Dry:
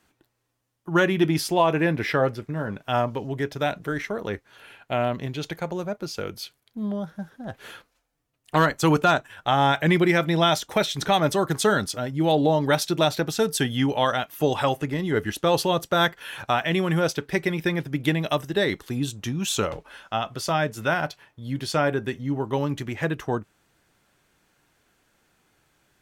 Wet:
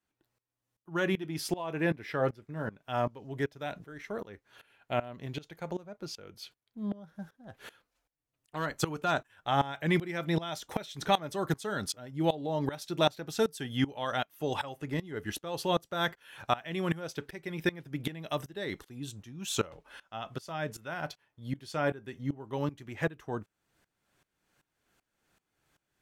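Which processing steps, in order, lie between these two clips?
0:05.72–0:07.08: high-shelf EQ 8,700 Hz −6 dB
tremolo with a ramp in dB swelling 2.6 Hz, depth 20 dB
level −3 dB

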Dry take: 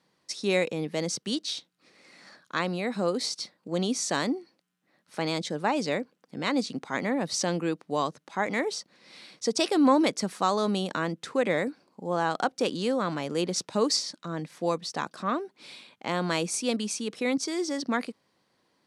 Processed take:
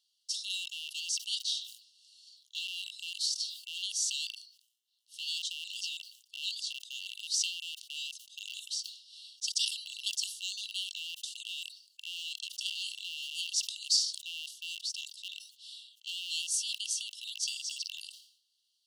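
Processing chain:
loose part that buzzes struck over −41 dBFS, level −20 dBFS
linear-phase brick-wall high-pass 2,700 Hz
level that may fall only so fast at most 94 dB per second

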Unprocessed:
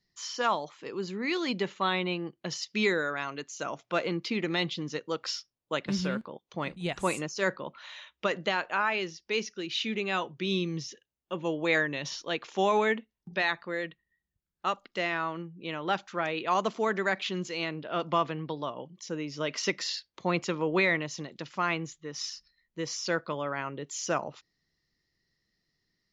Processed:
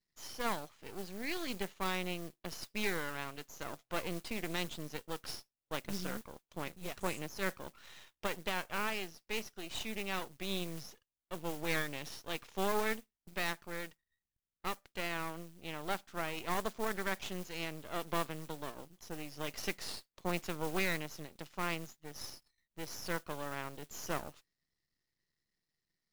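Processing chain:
noise that follows the level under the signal 12 dB
half-wave rectification
level −5.5 dB

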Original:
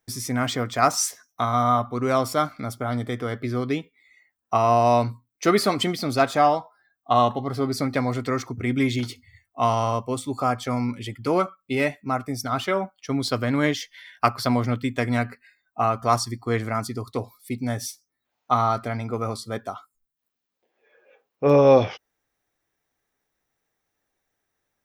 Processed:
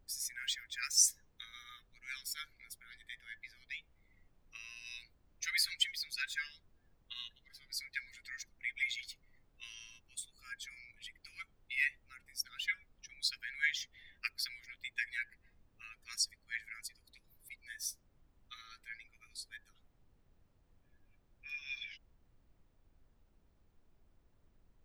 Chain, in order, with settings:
spectral dynamics exaggerated over time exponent 1.5
Chebyshev high-pass with heavy ripple 1,600 Hz, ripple 3 dB
background noise brown −66 dBFS
level −1 dB

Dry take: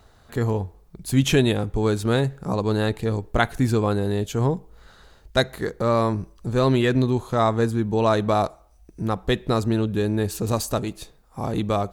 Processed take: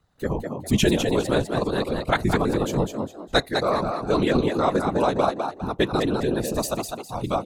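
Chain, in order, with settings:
noise reduction from a noise print of the clip's start 14 dB
random phases in short frames
tempo change 1.6×
echo with shifted repeats 203 ms, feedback 31%, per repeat +84 Hz, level −5.5 dB

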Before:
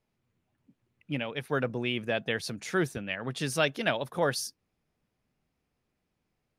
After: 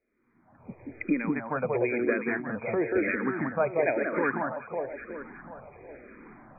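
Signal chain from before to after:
camcorder AGC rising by 42 dB per second
linear-phase brick-wall low-pass 2,500 Hz
low shelf with overshoot 210 Hz −7.5 dB, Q 1.5
delay that swaps between a low-pass and a high-pass 185 ms, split 1,500 Hz, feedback 74%, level −2.5 dB
frequency shifter mixed with the dry sound −1 Hz
level +2.5 dB

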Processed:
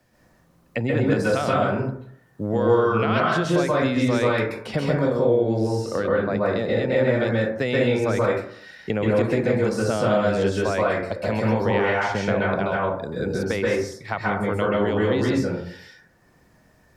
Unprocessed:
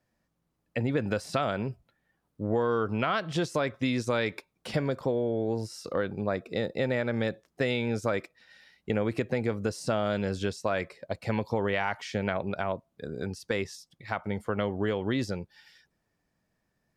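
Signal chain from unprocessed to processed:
0:04.52–0:06.99: high-shelf EQ 4,900 Hz −5 dB
dense smooth reverb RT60 0.57 s, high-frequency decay 0.4×, pre-delay 120 ms, DRR −5 dB
multiband upward and downward compressor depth 40%
level +1.5 dB

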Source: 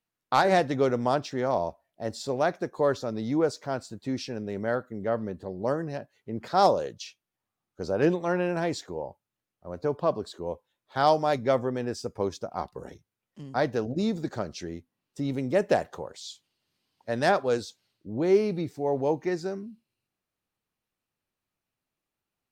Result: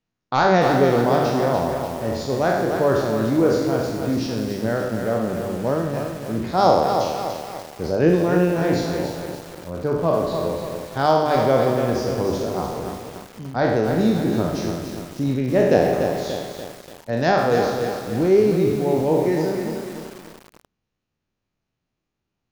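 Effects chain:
peak hold with a decay on every bin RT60 1.06 s
linear-phase brick-wall low-pass 7,100 Hz
low-shelf EQ 410 Hz +10 dB
hum removal 49.58 Hz, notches 28
feedback echo at a low word length 291 ms, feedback 55%, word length 6 bits, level −6 dB

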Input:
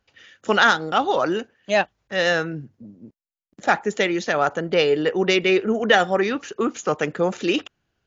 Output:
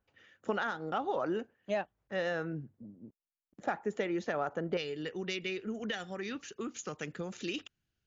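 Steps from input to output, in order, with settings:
downward compressor, threshold −20 dBFS, peak gain reduction 9.5 dB
parametric band 5,200 Hz −11 dB 2.5 octaves, from 0:04.77 720 Hz
level −7.5 dB

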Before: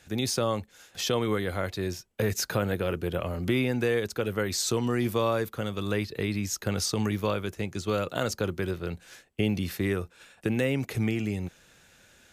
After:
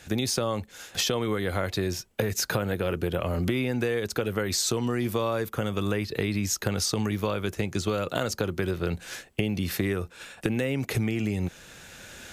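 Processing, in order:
camcorder AGC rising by 6.4 dB per second
0:05.49–0:06.05: parametric band 4,100 Hz −9.5 dB 0.29 octaves
downward compressor, threshold −31 dBFS, peak gain reduction 10 dB
level +7.5 dB

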